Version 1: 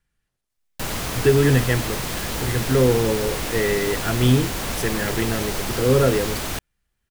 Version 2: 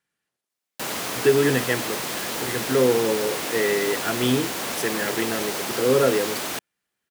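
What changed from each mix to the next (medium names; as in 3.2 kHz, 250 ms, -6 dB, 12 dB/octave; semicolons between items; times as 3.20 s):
master: add high-pass 250 Hz 12 dB/octave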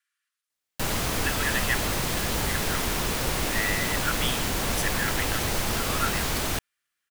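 speech: add steep high-pass 1.1 kHz 96 dB/octave; master: remove high-pass 250 Hz 12 dB/octave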